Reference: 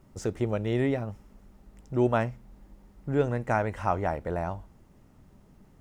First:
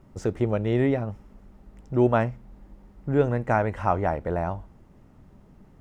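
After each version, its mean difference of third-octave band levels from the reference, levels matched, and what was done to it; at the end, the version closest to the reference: 1.5 dB: treble shelf 3.8 kHz -9.5 dB; trim +4 dB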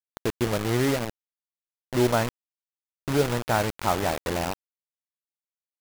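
10.5 dB: bit crusher 5-bit; trim +2 dB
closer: first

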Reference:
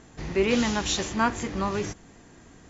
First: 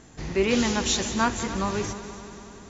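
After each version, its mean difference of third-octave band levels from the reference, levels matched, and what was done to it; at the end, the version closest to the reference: 3.5 dB: tone controls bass +1 dB, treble +4 dB; on a send: multi-head delay 96 ms, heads second and third, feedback 65%, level -15 dB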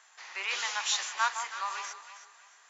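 13.5 dB: high-pass 950 Hz 24 dB/octave; echo whose repeats swap between lows and highs 160 ms, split 1.2 kHz, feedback 54%, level -6 dB; trim -1.5 dB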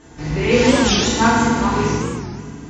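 5.5 dB: FDN reverb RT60 1.8 s, low-frequency decay 1.45×, high-frequency decay 0.85×, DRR -9.5 dB; warped record 45 rpm, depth 250 cents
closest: first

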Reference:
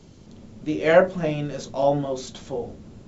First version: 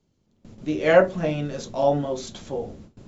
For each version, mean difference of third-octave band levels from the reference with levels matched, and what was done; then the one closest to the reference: 1.5 dB: gate with hold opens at -34 dBFS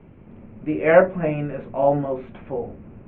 3.0 dB: elliptic low-pass 2.5 kHz, stop band 50 dB; trim +2.5 dB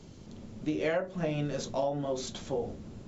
5.0 dB: compression 16:1, threshold -25 dBFS, peak gain reduction 16.5 dB; trim -1.5 dB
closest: first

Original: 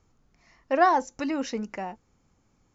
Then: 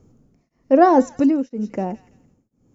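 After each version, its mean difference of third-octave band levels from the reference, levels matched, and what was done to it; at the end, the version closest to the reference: 6.5 dB: ten-band graphic EQ 125 Hz +8 dB, 250 Hz +10 dB, 500 Hz +7 dB, 1 kHz -5 dB, 2 kHz -6 dB, 4 kHz -7 dB; feedback echo behind a high-pass 167 ms, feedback 33%, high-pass 2.1 kHz, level -12 dB; tremolo of two beating tones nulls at 1 Hz; trim +6.5 dB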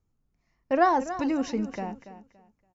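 3.5 dB: gate -51 dBFS, range -14 dB; bass shelf 340 Hz +9.5 dB; feedback delay 284 ms, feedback 25%, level -13 dB; trim -3 dB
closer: second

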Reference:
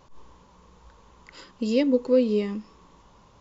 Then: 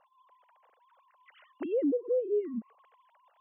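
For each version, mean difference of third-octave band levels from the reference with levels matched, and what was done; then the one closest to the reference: 8.5 dB: formants replaced by sine waves; compression 2:1, threshold -21 dBFS, peak gain reduction 5 dB; peak limiter -22 dBFS, peak gain reduction 8 dB; low-pass that closes with the level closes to 790 Hz, closed at -29.5 dBFS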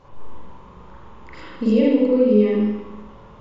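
5.5 dB: low-pass 2.2 kHz 6 dB/octave; compression, threshold -24 dBFS, peak gain reduction 9 dB; on a send: thinning echo 77 ms, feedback 57%, high-pass 980 Hz, level -7.5 dB; on the sum: spring tank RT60 1 s, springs 38/47 ms, chirp 80 ms, DRR -7 dB; trim +3.5 dB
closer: second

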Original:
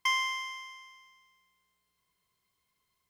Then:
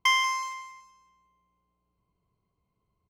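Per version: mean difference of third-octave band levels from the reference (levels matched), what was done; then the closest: 3.0 dB: local Wiener filter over 25 samples; bass shelf 270 Hz +7.5 dB; feedback delay 187 ms, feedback 33%, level -11 dB; trim +5.5 dB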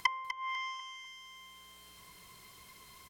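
7.0 dB: low-pass that closes with the level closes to 490 Hz, closed at -29.5 dBFS; upward compressor, threshold -46 dBFS; feedback delay 247 ms, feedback 39%, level -10 dB; trim +6 dB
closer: first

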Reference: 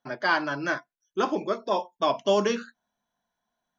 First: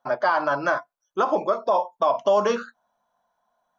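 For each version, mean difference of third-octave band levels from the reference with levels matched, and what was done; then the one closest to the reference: 4.0 dB: high-order bell 830 Hz +12 dB; compression, threshold -13 dBFS, peak gain reduction 6 dB; peak limiter -11 dBFS, peak gain reduction 6 dB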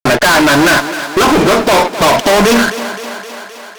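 14.0 dB: compression 2.5:1, threshold -27 dBFS, peak gain reduction 7 dB; fuzz box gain 47 dB, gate -53 dBFS; on a send: thinning echo 260 ms, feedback 70%, high-pass 230 Hz, level -11.5 dB; on the sum: trim +5.5 dB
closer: first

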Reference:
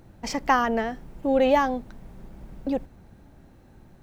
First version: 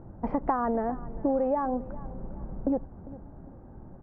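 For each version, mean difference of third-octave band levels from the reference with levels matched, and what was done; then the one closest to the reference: 7.5 dB: low-pass 1.2 kHz 24 dB/octave; compression 12:1, threshold -28 dBFS, peak gain reduction 14 dB; feedback delay 401 ms, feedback 36%, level -18.5 dB; trim +5 dB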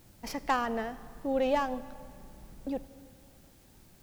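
5.5 dB: tracing distortion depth 0.068 ms; added noise white -56 dBFS; algorithmic reverb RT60 2.2 s, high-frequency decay 0.75×, pre-delay 25 ms, DRR 16.5 dB; trim -8 dB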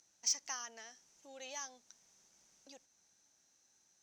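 10.5 dB: in parallel at +1 dB: compression, threshold -32 dBFS, peak gain reduction 16 dB; on the sum: band-pass filter 6.1 kHz, Q 8.4; saturation -29 dBFS, distortion -18 dB; trim +6 dB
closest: second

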